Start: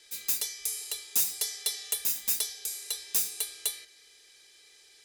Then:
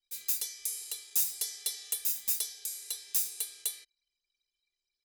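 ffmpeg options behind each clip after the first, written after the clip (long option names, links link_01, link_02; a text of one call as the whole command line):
ffmpeg -i in.wav -af "anlmdn=0.00631,highshelf=frequency=4200:gain=7,volume=-8.5dB" out.wav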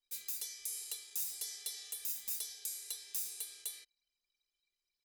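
ffmpeg -i in.wav -af "alimiter=limit=-24dB:level=0:latency=1:release=112,volume=-2.5dB" out.wav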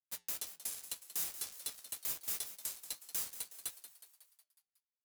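ffmpeg -i in.wav -filter_complex "[0:a]acrusher=bits=5:mix=0:aa=0.5,flanger=delay=6.8:depth=2:regen=-81:speed=1.9:shape=triangular,asplit=2[link_01][link_02];[link_02]asplit=6[link_03][link_04][link_05][link_06][link_07][link_08];[link_03]adelay=183,afreqshift=150,volume=-12.5dB[link_09];[link_04]adelay=366,afreqshift=300,volume=-17.2dB[link_10];[link_05]adelay=549,afreqshift=450,volume=-22dB[link_11];[link_06]adelay=732,afreqshift=600,volume=-26.7dB[link_12];[link_07]adelay=915,afreqshift=750,volume=-31.4dB[link_13];[link_08]adelay=1098,afreqshift=900,volume=-36.2dB[link_14];[link_09][link_10][link_11][link_12][link_13][link_14]amix=inputs=6:normalize=0[link_15];[link_01][link_15]amix=inputs=2:normalize=0,volume=5dB" out.wav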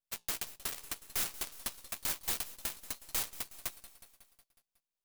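ffmpeg -i in.wav -af "asuperstop=centerf=1700:order=8:qfactor=1.4,aeval=exprs='max(val(0),0)':channel_layout=same,aeval=exprs='0.0631*(cos(1*acos(clip(val(0)/0.0631,-1,1)))-cos(1*PI/2))+0.0178*(cos(7*acos(clip(val(0)/0.0631,-1,1)))-cos(7*PI/2))':channel_layout=same,volume=6dB" out.wav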